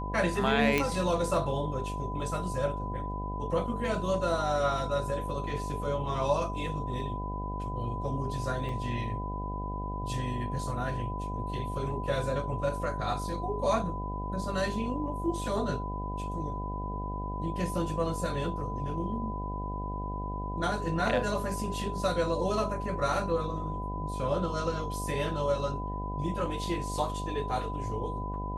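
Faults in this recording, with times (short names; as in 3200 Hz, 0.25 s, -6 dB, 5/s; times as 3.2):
buzz 50 Hz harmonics 16 -36 dBFS
tone 1000 Hz -37 dBFS
0.78 pop -12 dBFS
8.69 gap 2.3 ms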